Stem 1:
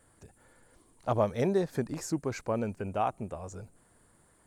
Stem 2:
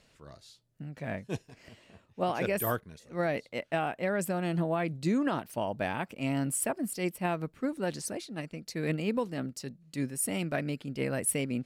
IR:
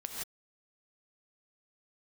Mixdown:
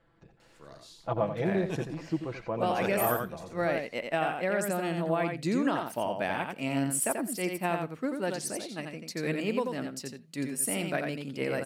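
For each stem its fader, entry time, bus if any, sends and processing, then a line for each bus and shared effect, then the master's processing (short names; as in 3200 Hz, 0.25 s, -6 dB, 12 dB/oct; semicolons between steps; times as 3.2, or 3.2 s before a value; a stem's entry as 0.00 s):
-3.5 dB, 0.00 s, no send, echo send -10 dB, LPF 4100 Hz 24 dB/oct; comb 6 ms, depth 70%
+1.0 dB, 0.40 s, send -20.5 dB, echo send -4.5 dB, HPF 230 Hz 6 dB/oct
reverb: on, pre-delay 3 ms
echo: echo 87 ms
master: dry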